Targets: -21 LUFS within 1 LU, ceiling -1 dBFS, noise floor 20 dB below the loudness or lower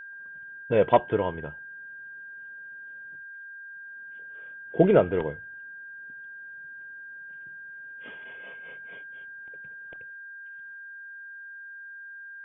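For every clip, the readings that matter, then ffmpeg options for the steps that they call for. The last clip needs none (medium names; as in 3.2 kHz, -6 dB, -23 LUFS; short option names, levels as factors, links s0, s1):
steady tone 1.6 kHz; tone level -40 dBFS; loudness -31.5 LUFS; peak level -6.5 dBFS; loudness target -21.0 LUFS
-> -af "bandreject=f=1600:w=30"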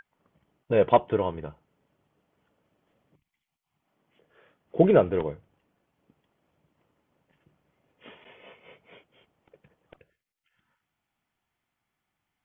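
steady tone not found; loudness -24.0 LUFS; peak level -6.5 dBFS; loudness target -21.0 LUFS
-> -af "volume=1.41"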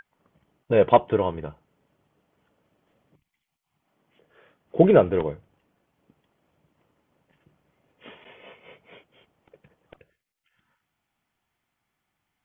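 loudness -21.0 LUFS; peak level -3.5 dBFS; noise floor -81 dBFS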